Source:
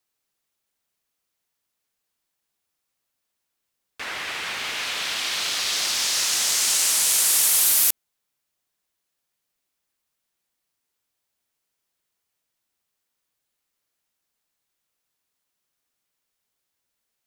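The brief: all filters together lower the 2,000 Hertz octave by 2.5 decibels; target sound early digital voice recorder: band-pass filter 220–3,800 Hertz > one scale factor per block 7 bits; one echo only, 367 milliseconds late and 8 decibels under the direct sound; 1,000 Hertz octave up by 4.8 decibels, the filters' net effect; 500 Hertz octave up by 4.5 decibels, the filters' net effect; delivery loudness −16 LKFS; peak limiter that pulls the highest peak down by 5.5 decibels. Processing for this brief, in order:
parametric band 500 Hz +4 dB
parametric band 1,000 Hz +6.5 dB
parametric band 2,000 Hz −4.5 dB
brickwall limiter −11.5 dBFS
band-pass filter 220–3,800 Hz
single-tap delay 367 ms −8 dB
one scale factor per block 7 bits
level +11.5 dB

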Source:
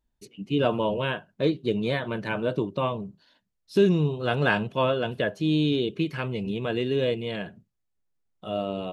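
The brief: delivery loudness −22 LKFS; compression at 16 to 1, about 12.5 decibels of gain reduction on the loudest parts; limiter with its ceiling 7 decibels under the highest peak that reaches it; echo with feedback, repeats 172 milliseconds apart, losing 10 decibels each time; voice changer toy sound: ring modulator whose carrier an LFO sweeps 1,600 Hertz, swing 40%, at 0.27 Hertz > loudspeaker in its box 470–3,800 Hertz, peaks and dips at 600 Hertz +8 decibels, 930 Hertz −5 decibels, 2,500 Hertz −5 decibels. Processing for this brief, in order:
downward compressor 16 to 1, threshold −27 dBFS
brickwall limiter −24 dBFS
repeating echo 172 ms, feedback 32%, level −10 dB
ring modulator whose carrier an LFO sweeps 1,600 Hz, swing 40%, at 0.27 Hz
loudspeaker in its box 470–3,800 Hz, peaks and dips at 600 Hz +8 dB, 930 Hz −5 dB, 2,500 Hz −5 dB
level +14.5 dB

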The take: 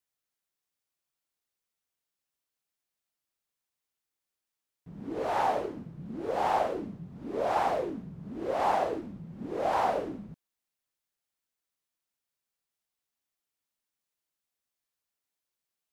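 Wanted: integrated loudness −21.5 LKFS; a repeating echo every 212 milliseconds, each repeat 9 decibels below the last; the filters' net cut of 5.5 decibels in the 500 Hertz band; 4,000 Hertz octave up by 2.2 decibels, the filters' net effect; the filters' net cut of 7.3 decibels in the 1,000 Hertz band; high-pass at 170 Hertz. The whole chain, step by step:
high-pass filter 170 Hz
parametric band 500 Hz −4 dB
parametric band 1,000 Hz −8.5 dB
parametric band 4,000 Hz +3.5 dB
repeating echo 212 ms, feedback 35%, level −9 dB
level +15.5 dB

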